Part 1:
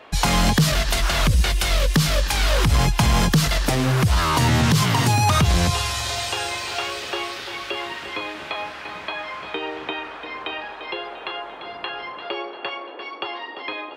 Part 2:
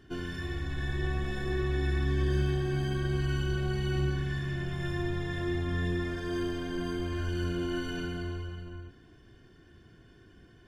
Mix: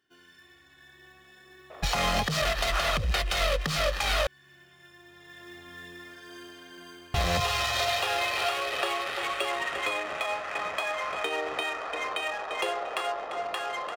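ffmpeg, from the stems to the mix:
-filter_complex "[0:a]adynamicsmooth=sensitivity=6:basefreq=750,bass=f=250:g=-11,treble=f=4k:g=-3,aecho=1:1:1.6:0.43,adelay=1700,volume=2dB,asplit=3[a][b][c];[a]atrim=end=4.27,asetpts=PTS-STARTPTS,afade=t=out:st=4.266:d=0.004:c=hsin[d];[b]atrim=start=4.27:end=7.14,asetpts=PTS-STARTPTS,volume=0[e];[c]atrim=start=7.14,asetpts=PTS-STARTPTS,afade=t=in:d=0.004:c=hsin[f];[d][e][f]concat=n=3:v=0:a=1[g];[1:a]highpass=f=1.4k:p=1,acrusher=bits=4:mode=log:mix=0:aa=0.000001,volume=-3dB,afade=t=in:st=5.03:d=0.6:silence=0.398107,afade=t=out:st=6.9:d=0.54:silence=0.375837[h];[g][h]amix=inputs=2:normalize=0,alimiter=limit=-17dB:level=0:latency=1:release=308"

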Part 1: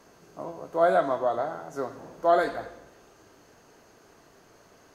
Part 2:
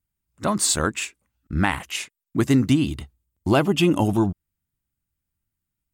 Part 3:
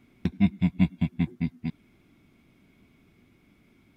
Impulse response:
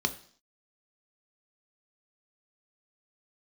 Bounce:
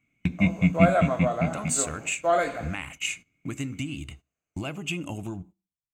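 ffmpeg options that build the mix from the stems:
-filter_complex "[0:a]agate=range=-18dB:threshold=-44dB:ratio=16:detection=peak,volume=0dB,asplit=2[a][b];[b]volume=-15.5dB[c];[1:a]acompressor=threshold=-22dB:ratio=6,adelay=1100,volume=-7.5dB,asplit=2[d][e];[e]volume=-17dB[f];[2:a]volume=-0.5dB,asplit=2[g][h];[h]volume=-11.5dB[i];[3:a]atrim=start_sample=2205[j];[c][f][i]amix=inputs=3:normalize=0[k];[k][j]afir=irnorm=-1:irlink=0[l];[a][d][g][l]amix=inputs=4:normalize=0,agate=range=-16dB:threshold=-47dB:ratio=16:detection=peak,superequalizer=12b=2.51:15b=2.82"

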